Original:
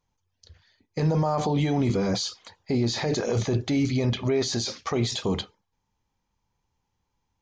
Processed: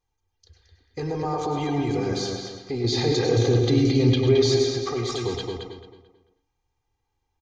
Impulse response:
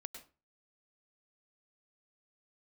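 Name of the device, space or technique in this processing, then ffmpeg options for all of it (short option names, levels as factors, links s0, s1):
microphone above a desk: -filter_complex "[0:a]asettb=1/sr,asplit=3[s0][s1][s2];[s0]atrim=end=2.844[s3];[s1]atrim=start=2.84:end=4.56,asetpts=PTS-STARTPTS,afade=t=in:d=0.004:c=qsin,afade=t=out:st=1.716:d=0.004:c=qsin,equalizer=f=125:t=o:w=1:g=8,equalizer=f=250:t=o:w=1:g=5,equalizer=f=500:t=o:w=1:g=4,equalizer=f=4000:t=o:w=1:g=8[s4];[s2]atrim=start=4.556[s5];[s3][s4]acrossfade=d=0.004:c1=hsin:c2=qsin[s6];[s6][s5]acrossfade=d=0.004:c1=qsin:c2=hsin,aecho=1:1:2.5:0.71[s7];[1:a]atrim=start_sample=2205[s8];[s7][s8]afir=irnorm=-1:irlink=0,asplit=2[s9][s10];[s10]adelay=220,lowpass=f=3400:p=1,volume=0.708,asplit=2[s11][s12];[s12]adelay=220,lowpass=f=3400:p=1,volume=0.33,asplit=2[s13][s14];[s14]adelay=220,lowpass=f=3400:p=1,volume=0.33,asplit=2[s15][s16];[s16]adelay=220,lowpass=f=3400:p=1,volume=0.33[s17];[s9][s11][s13][s15][s17]amix=inputs=5:normalize=0"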